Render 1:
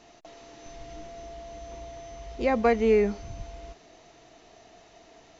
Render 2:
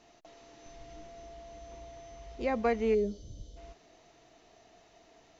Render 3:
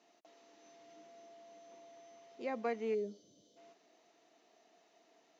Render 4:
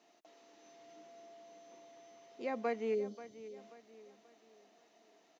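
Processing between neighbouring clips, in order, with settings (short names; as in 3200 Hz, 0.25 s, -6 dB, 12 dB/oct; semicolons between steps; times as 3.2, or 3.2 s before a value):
spectral gain 2.94–3.57, 640–2900 Hz -19 dB; gain -6.5 dB
HPF 210 Hz 24 dB/oct; gain -8 dB
feedback echo 0.535 s, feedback 39%, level -15 dB; gain +1 dB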